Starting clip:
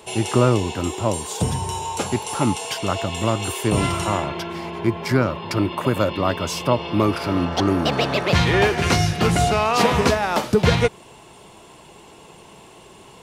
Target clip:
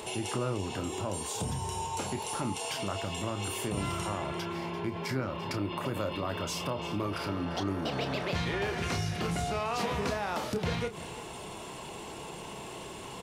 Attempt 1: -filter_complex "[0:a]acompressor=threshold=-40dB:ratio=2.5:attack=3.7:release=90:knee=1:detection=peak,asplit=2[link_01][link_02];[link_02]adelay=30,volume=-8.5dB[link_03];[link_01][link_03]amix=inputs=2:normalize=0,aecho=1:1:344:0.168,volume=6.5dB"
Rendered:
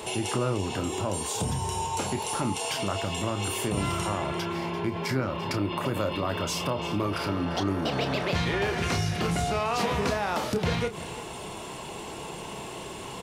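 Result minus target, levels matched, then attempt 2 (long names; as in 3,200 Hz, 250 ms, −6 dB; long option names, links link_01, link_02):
downward compressor: peak gain reduction −5 dB
-filter_complex "[0:a]acompressor=threshold=-48dB:ratio=2.5:attack=3.7:release=90:knee=1:detection=peak,asplit=2[link_01][link_02];[link_02]adelay=30,volume=-8.5dB[link_03];[link_01][link_03]amix=inputs=2:normalize=0,aecho=1:1:344:0.168,volume=6.5dB"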